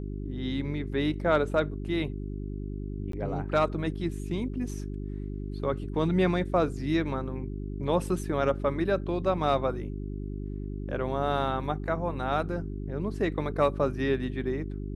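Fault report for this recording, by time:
hum 50 Hz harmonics 8 -35 dBFS
3.12–3.13 s: dropout 13 ms

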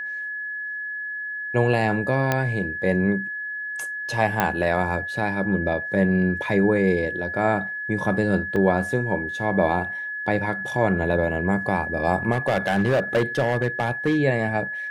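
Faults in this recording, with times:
whine 1.7 kHz -28 dBFS
2.32 s: pop -7 dBFS
4.40 s: pop -6 dBFS
8.56 s: dropout 3.6 ms
12.31–14.19 s: clipped -15.5 dBFS

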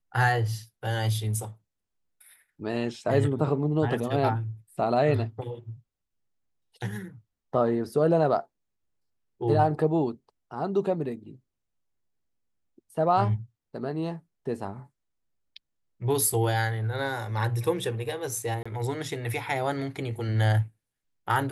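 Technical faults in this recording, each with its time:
18.63–18.66 s: dropout 25 ms

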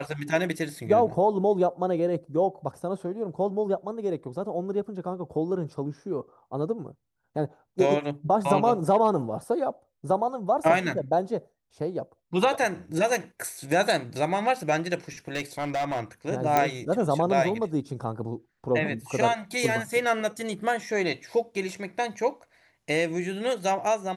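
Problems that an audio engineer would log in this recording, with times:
15.28–16.01 s: clipped -24 dBFS
16.57 s: pop -8 dBFS

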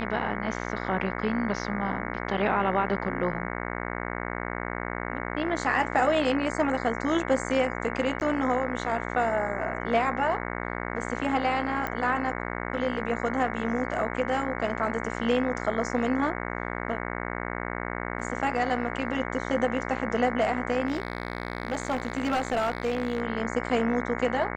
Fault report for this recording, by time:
buzz 60 Hz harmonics 37 -33 dBFS
8.20–8.21 s: dropout 9.8 ms
11.87 s: pop -16 dBFS
20.87–23.22 s: clipped -21.5 dBFS

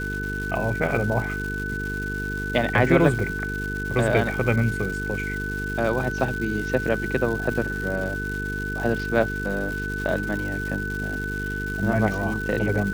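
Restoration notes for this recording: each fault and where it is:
buzz 50 Hz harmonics 9 -31 dBFS
crackle 430 per s -31 dBFS
whine 1.5 kHz -29 dBFS

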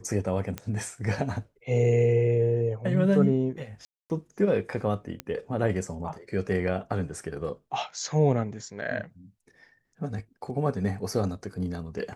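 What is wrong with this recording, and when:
0.58 s: pop -18 dBFS
3.85–4.10 s: dropout 249 ms
5.20 s: pop -17 dBFS

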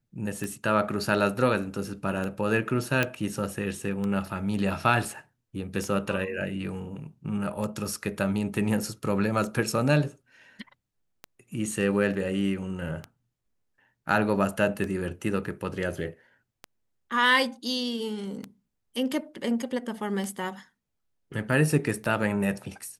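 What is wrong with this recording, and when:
tick 33 1/3 rpm -20 dBFS
3.03 s: pop -10 dBFS

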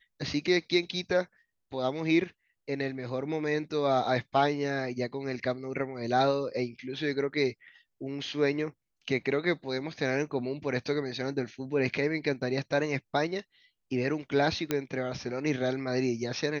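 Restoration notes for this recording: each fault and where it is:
14.71 s: pop -13 dBFS

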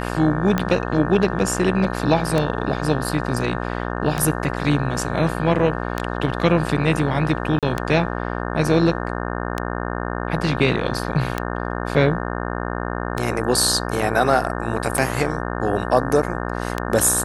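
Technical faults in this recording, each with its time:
buzz 60 Hz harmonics 30 -26 dBFS
tick 33 1/3 rpm -7 dBFS
7.59–7.63 s: dropout 37 ms

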